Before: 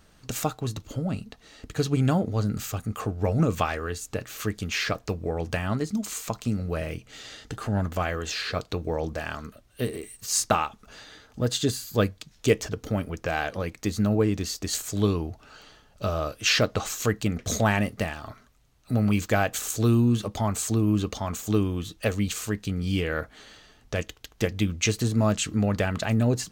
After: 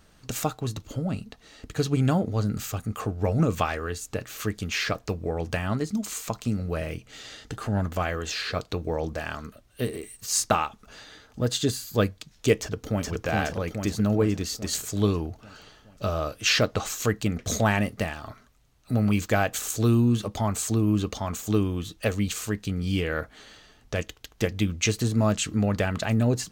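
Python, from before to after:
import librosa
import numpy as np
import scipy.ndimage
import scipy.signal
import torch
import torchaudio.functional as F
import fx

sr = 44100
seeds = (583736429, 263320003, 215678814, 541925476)

y = fx.echo_throw(x, sr, start_s=12.56, length_s=0.55, ms=420, feedback_pct=60, wet_db=-1.5)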